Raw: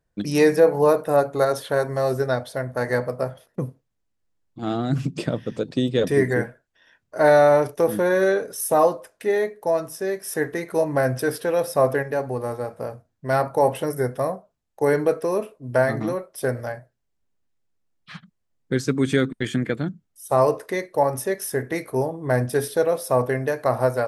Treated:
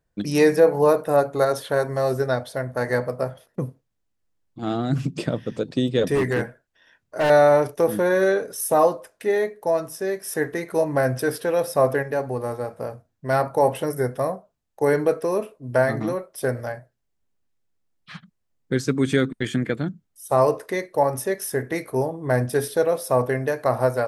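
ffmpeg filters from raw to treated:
-filter_complex "[0:a]asettb=1/sr,asplit=3[s0][s1][s2];[s0]atrim=end=6.154[s3];[s1]atrim=start=6.15:end=7.3,asetpts=PTS-STARTPTS,afade=t=in:d=0.004:c=qsin,afade=t=out:st=1.146:d=0.004:c=qsin,volume=7.08,asoftclip=hard,volume=0.141[s4];[s2]atrim=start=7.296[s5];[s3][s4]acrossfade=d=0.004:c1=hsin:c2=qsin[s6];[s6][s5]acrossfade=d=0.004:c1=qsin:c2=hsin"

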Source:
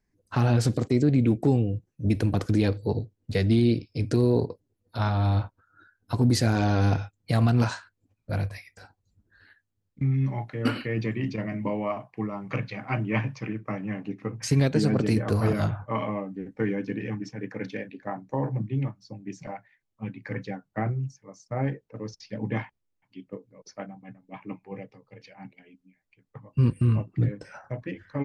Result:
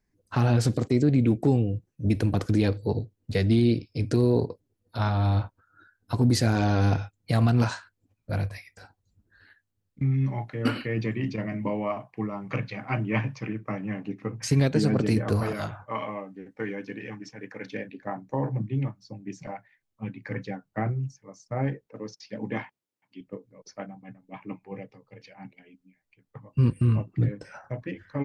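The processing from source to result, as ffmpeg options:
-filter_complex "[0:a]asettb=1/sr,asplit=3[s0][s1][s2];[s0]atrim=end=15.434[s3];[s1]atrim=start=15.43:end=17.72,asetpts=PTS-STARTPTS,afade=t=in:d=0.004:c=qsin,afade=t=out:st=2.286:d=0.004:c=qsin,lowshelf=f=350:g=-11[s4];[s2]atrim=start=17.716[s5];[s3][s4]acrossfade=d=0.004:c1=hsin:c2=qsin[s6];[s6][s5]acrossfade=d=0.004:c1=qsin:c2=hsin,asettb=1/sr,asplit=3[s7][s8][s9];[s7]atrim=end=21.874[s10];[s8]atrim=start=21.87:end=23.21,asetpts=PTS-STARTPTS,afade=t=in:d=0.004:c=qsin,afade=t=out:st=1.336:d=0.004:c=qsin,highpass=180[s11];[s9]atrim=start=23.206[s12];[s10][s11]acrossfade=d=0.004:c1=hsin:c2=qsin[s13];[s13][s12]acrossfade=d=0.004:c1=qsin:c2=hsin"

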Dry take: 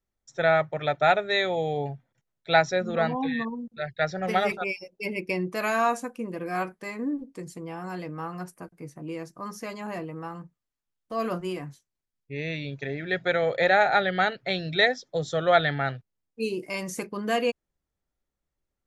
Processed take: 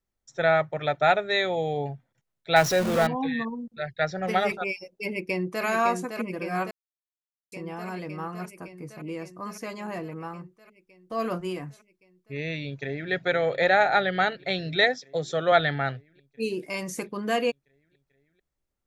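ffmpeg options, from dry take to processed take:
-filter_complex "[0:a]asettb=1/sr,asplit=3[s0][s1][s2];[s0]atrim=end=2.564[s3];[s1]atrim=start=2.56:end=3.07,asetpts=PTS-STARTPTS,afade=t=in:d=0.004:c=qsin,afade=t=out:st=0.506:d=0.004:c=qsin,aeval=exprs='val(0)+0.5*0.0562*sgn(val(0))':c=same[s4];[s2]atrim=start=3.066[s5];[s3][s4]acrossfade=d=0.004:c1=hsin:c2=qsin[s6];[s6][s5]acrossfade=d=0.004:c1=qsin:c2=hsin,asplit=2[s7][s8];[s8]afade=t=in:st=5.05:d=0.01,afade=t=out:st=5.65:d=0.01,aecho=0:1:560|1120|1680|2240|2800|3360|3920|4480|5040|5600|6160|6720:0.501187|0.37589|0.281918|0.211438|0.158579|0.118934|0.0892006|0.0669004|0.0501753|0.0376315|0.0282236|0.0211677[s9];[s7][s9]amix=inputs=2:normalize=0,asplit=2[s10][s11];[s11]afade=t=in:st=12.63:d=0.01,afade=t=out:st=13.11:d=0.01,aecho=0:1:440|880|1320|1760|2200|2640|3080|3520|3960|4400|4840|5280:0.16788|0.134304|0.107443|0.0859548|0.0687638|0.0550111|0.0440088|0.0352071|0.0281657|0.0225325|0.018026|0.0144208[s12];[s10][s12]amix=inputs=2:normalize=0,asettb=1/sr,asplit=3[s13][s14][s15];[s13]atrim=end=14.844[s16];[s14]atrim=start=14.84:end=15.52,asetpts=PTS-STARTPTS,afade=t=in:d=0.004:c=qsin,afade=t=out:st=0.676:d=0.004:c=qsin,highpass=150[s17];[s15]atrim=start=15.516[s18];[s16][s17]acrossfade=d=0.004:c1=hsin:c2=qsin[s19];[s19][s18]acrossfade=d=0.004:c1=qsin:c2=hsin,asplit=3[s20][s21][s22];[s20]atrim=end=6.71,asetpts=PTS-STARTPTS,afade=t=out:st=6.706:d=0.004:c=hsin[s23];[s21]atrim=start=6.71:end=7.52,asetpts=PTS-STARTPTS,volume=0[s24];[s22]atrim=start=7.52,asetpts=PTS-STARTPTS,afade=t=in:d=0.004:c=hsin[s25];[s23][s24][s25]concat=n=3:v=0:a=1"

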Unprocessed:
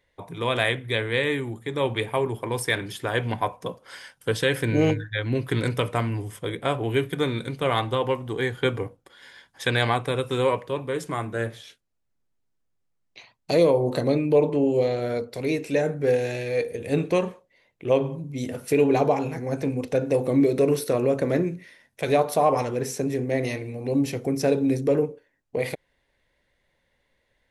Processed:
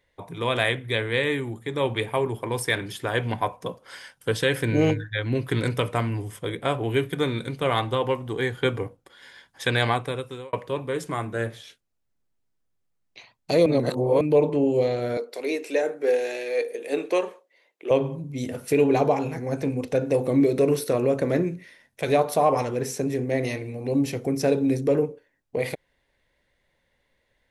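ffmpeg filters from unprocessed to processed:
-filter_complex "[0:a]asettb=1/sr,asplit=3[s0][s1][s2];[s0]atrim=end=15.174[s3];[s1]atrim=start=15.17:end=17.91,asetpts=PTS-STARTPTS,afade=t=in:d=0.004:c=qsin,afade=t=out:st=2.736:d=0.004:c=qsin,highpass=f=320:w=0.5412,highpass=f=320:w=1.3066[s4];[s2]atrim=start=17.906[s5];[s3][s4]acrossfade=d=0.004:c1=hsin:c2=qsin[s6];[s6][s5]acrossfade=d=0.004:c1=qsin:c2=hsin,asplit=4[s7][s8][s9][s10];[s7]atrim=end=10.53,asetpts=PTS-STARTPTS,afade=t=out:st=9.91:d=0.62[s11];[s8]atrim=start=10.53:end=13.662,asetpts=PTS-STARTPTS,afade=t=in:d=0.004:c=hsin[s12];[s9]atrim=start=13.658:end=14.212,asetpts=PTS-STARTPTS,areverse[s13];[s10]atrim=start=14.208[s14];[s11][s12]concat=n=2:v=0:a=1[s15];[s15][s13]acrossfade=d=0.004:c1=hsin:c2=hsin[s16];[s16][s14]acrossfade=d=0.004:c1=hsin:c2=hsin"

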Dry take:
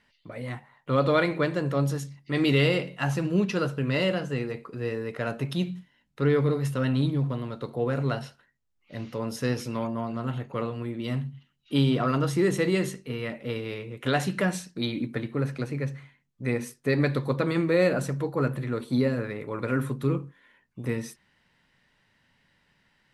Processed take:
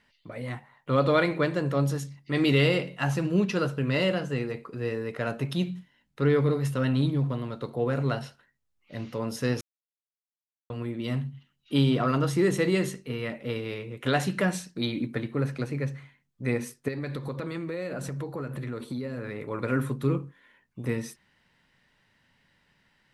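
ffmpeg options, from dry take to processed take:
-filter_complex "[0:a]asettb=1/sr,asplit=3[s0][s1][s2];[s0]atrim=end=16.884[s3];[s1]atrim=start=16.88:end=19.5,asetpts=PTS-STARTPTS,afade=t=in:d=0.004:c=qsin,afade=t=out:st=2.616:d=0.004:c=qsin,acompressor=threshold=0.0316:ratio=6:attack=3.2:release=140:knee=1:detection=peak[s4];[s2]atrim=start=19.496[s5];[s3][s4]acrossfade=d=0.004:c1=hsin:c2=qsin[s6];[s6][s5]acrossfade=d=0.004:c1=qsin:c2=hsin,asplit=3[s7][s8][s9];[s7]atrim=end=9.61,asetpts=PTS-STARTPTS,afade=t=out:st=9.606:d=0.004:c=hsin[s10];[s8]atrim=start=9.61:end=10.7,asetpts=PTS-STARTPTS,volume=0[s11];[s9]atrim=start=10.7,asetpts=PTS-STARTPTS,afade=t=in:d=0.004:c=hsin[s12];[s10][s11][s12]concat=n=3:v=0:a=1"

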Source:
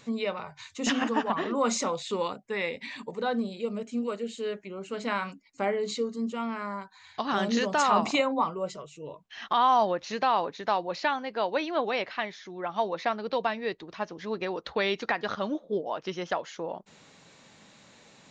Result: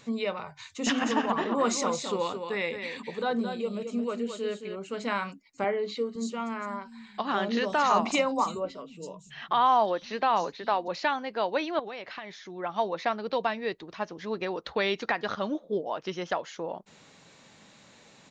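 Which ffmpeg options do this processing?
-filter_complex "[0:a]asplit=3[s0][s1][s2];[s0]afade=t=out:st=0.85:d=0.02[s3];[s1]aecho=1:1:218:0.422,afade=t=in:st=0.85:d=0.02,afade=t=out:st=4.75:d=0.02[s4];[s2]afade=t=in:st=4.75:d=0.02[s5];[s3][s4][s5]amix=inputs=3:normalize=0,asettb=1/sr,asplit=3[s6][s7][s8];[s6]atrim=end=5.644[s9];[s7]atrim=start=5.64:end=10.88,asetpts=PTS-STARTPTS,afade=t=in:d=0.004:c=qsin,afade=t=out:st=5.236:d=0.004:c=qsin,acrossover=split=170|4900[s10][s11][s12];[s12]adelay=330[s13];[s10]adelay=510[s14];[s14][s11][s13]amix=inputs=3:normalize=0,atrim=end_sample=231084[s15];[s8]atrim=start=10.876[s16];[s9][s15]acrossfade=d=0.004:c1=hsin:c2=qsin[s17];[s17][s16]acrossfade=d=0.004:c1=qsin:c2=hsin,asettb=1/sr,asplit=3[s18][s19][s20];[s18]atrim=end=11.794[s21];[s19]atrim=start=11.79:end=12.45,asetpts=PTS-STARTPTS,afade=t=in:d=0.004:c=qsin,afade=t=out:st=0.656:d=0.004:c=qsin,acompressor=threshold=0.0178:ratio=6:attack=3.2:release=140:knee=1:detection=peak[s22];[s20]atrim=start=12.446[s23];[s21][s22]acrossfade=d=0.004:c1=hsin:c2=qsin[s24];[s24][s23]acrossfade=d=0.004:c1=qsin:c2=hsin"

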